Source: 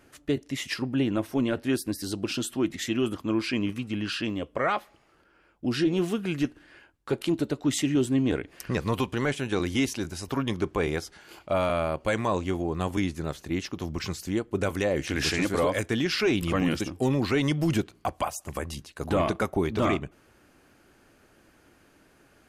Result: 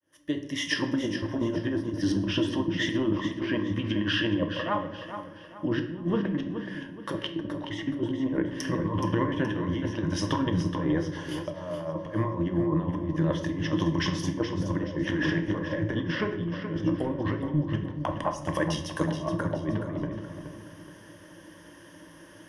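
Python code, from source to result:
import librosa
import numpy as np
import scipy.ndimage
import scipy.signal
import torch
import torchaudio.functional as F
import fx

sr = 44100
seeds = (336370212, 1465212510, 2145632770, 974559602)

y = fx.fade_in_head(x, sr, length_s=1.11)
y = scipy.signal.sosfilt(scipy.signal.butter(2, 81.0, 'highpass', fs=sr, output='sos'), y)
y = fx.env_lowpass_down(y, sr, base_hz=1300.0, full_db=-24.5)
y = fx.ripple_eq(y, sr, per_octave=1.2, db=14)
y = fx.over_compress(y, sr, threshold_db=-29.0, ratio=-0.5)
y = fx.echo_feedback(y, sr, ms=423, feedback_pct=36, wet_db=-9.5)
y = fx.room_shoebox(y, sr, seeds[0], volume_m3=210.0, walls='mixed', distance_m=0.53)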